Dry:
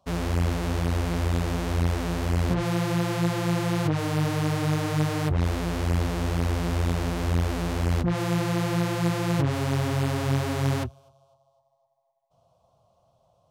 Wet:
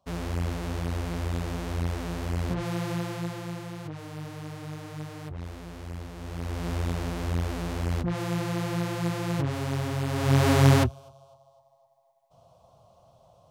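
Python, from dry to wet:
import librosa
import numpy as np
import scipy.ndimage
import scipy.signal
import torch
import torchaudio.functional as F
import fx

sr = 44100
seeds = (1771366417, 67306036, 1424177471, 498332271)

y = fx.gain(x, sr, db=fx.line((2.92, -5.0), (3.76, -13.5), (6.14, -13.5), (6.69, -4.0), (10.06, -4.0), (10.48, 7.0)))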